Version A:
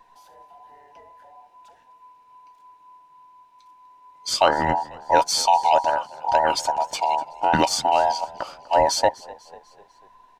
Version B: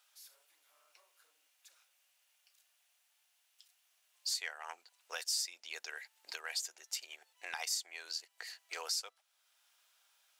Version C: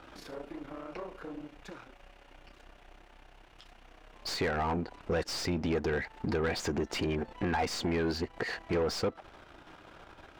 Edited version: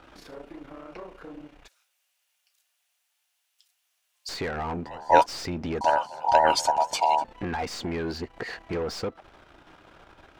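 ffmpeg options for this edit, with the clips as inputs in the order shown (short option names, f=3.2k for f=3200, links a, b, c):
-filter_complex "[0:a]asplit=2[a][b];[2:a]asplit=4[c][d][e][f];[c]atrim=end=1.682[g];[1:a]atrim=start=1.678:end=4.292[h];[d]atrim=start=4.288:end=4.862[i];[a]atrim=start=4.858:end=5.262[j];[e]atrim=start=5.258:end=5.812[k];[b]atrim=start=5.808:end=7.242[l];[f]atrim=start=7.238[m];[g][h]acrossfade=d=0.004:c1=hsin:c2=hsin[n];[n][i]acrossfade=d=0.004:c1=hsin:c2=hsin[o];[o][j]acrossfade=d=0.004:c1=hsin:c2=hsin[p];[p][k]acrossfade=d=0.004:c1=hsin:c2=hsin[q];[q][l]acrossfade=d=0.004:c1=hsin:c2=hsin[r];[r][m]acrossfade=d=0.004:c1=hsin:c2=hsin"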